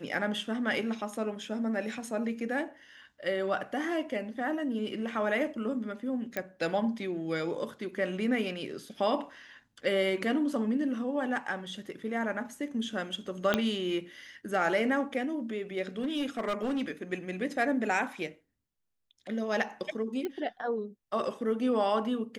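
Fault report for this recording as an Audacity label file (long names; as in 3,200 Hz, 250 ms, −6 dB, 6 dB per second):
6.370000	6.370000	click −17 dBFS
13.540000	13.540000	click −11 dBFS
15.990000	16.910000	clipping −26.5 dBFS
20.250000	20.250000	click −22 dBFS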